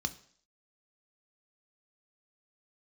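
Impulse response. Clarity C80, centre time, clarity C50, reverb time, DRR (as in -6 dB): 20.5 dB, 5 ms, 17.0 dB, 0.55 s, 8.5 dB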